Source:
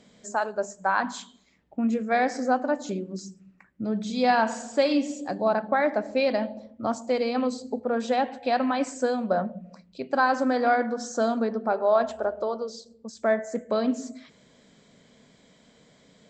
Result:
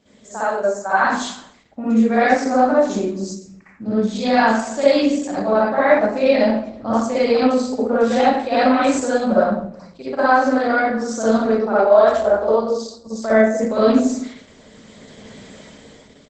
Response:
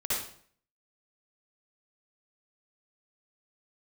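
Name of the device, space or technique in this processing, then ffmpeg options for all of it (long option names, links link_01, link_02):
speakerphone in a meeting room: -filter_complex "[0:a]asettb=1/sr,asplit=3[link_01][link_02][link_03];[link_01]atrim=end=11.394[link_04];[link_02]atrim=start=11.39:end=12.26,asetpts=PTS-STARTPTS,afade=type=in:duration=0.004:curve=qsin,afade=type=out:start_time=0.866:duration=0.004:curve=qsin,adynamicequalizer=threshold=0.0158:dfrequency=250:dqfactor=1.1:tfrequency=250:tqfactor=1.1:attack=5:release=100:ratio=0.375:range=2:mode=cutabove:tftype=bell[link_05];[link_03]atrim=start=12.256[link_06];[link_04][link_05]acrossfade=duration=0.004:curve1=hsin:curve2=qsin[link_07];[link_07][link_06]acrossfade=duration=0.004:curve1=qsin:curve2=hsin[link_08];[1:a]atrim=start_sample=2205[link_09];[link_08][link_09]afir=irnorm=-1:irlink=0,asplit=2[link_10][link_11];[link_11]adelay=360,highpass=300,lowpass=3400,asoftclip=type=hard:threshold=-10.5dB,volume=-30dB[link_12];[link_10][link_12]amix=inputs=2:normalize=0,dynaudnorm=framelen=170:gausssize=11:maxgain=13dB,volume=-1dB" -ar 48000 -c:a libopus -b:a 12k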